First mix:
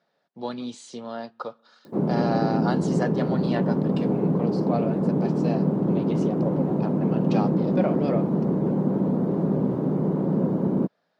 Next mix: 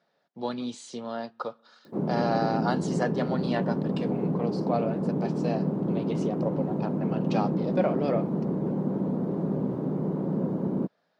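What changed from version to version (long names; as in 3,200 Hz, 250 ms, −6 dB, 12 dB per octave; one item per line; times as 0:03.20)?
background −5.0 dB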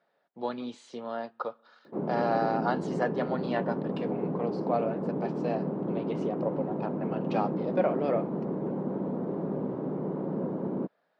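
master: add bass and treble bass −8 dB, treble −14 dB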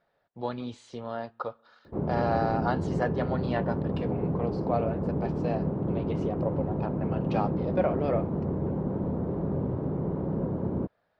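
master: remove high-pass filter 180 Hz 24 dB per octave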